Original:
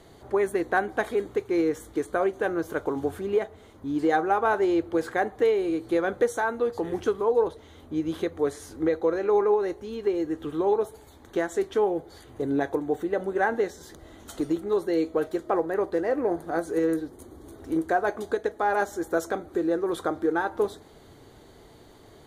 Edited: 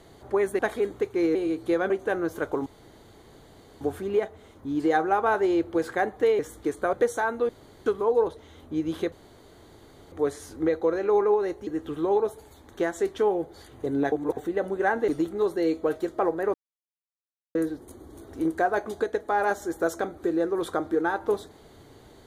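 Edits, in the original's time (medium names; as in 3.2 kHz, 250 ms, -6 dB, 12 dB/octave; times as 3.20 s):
0.59–0.94 s: delete
1.70–2.24 s: swap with 5.58–6.13 s
3.00 s: insert room tone 1.15 s
6.69–7.06 s: room tone
8.32 s: insert room tone 1.00 s
9.87–10.23 s: delete
12.68–12.93 s: reverse
13.64–14.39 s: delete
15.85–16.86 s: mute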